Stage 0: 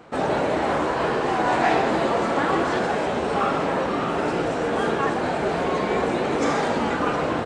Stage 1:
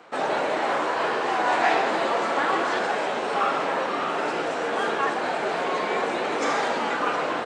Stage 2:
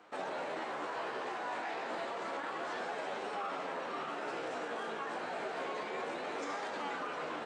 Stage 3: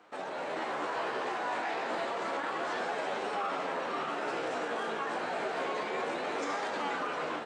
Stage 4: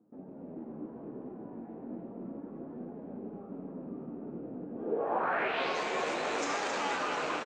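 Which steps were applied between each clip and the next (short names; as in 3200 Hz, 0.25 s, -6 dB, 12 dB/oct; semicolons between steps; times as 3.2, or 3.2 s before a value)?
weighting filter A
limiter -21 dBFS, peak gain reduction 11 dB; flange 0.3 Hz, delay 9.5 ms, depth 8.6 ms, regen +42%; gain -6 dB
AGC gain up to 5 dB
rattling part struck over -49 dBFS, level -33 dBFS; echo 0.268 s -6.5 dB; low-pass sweep 230 Hz -> 6900 Hz, 4.73–5.81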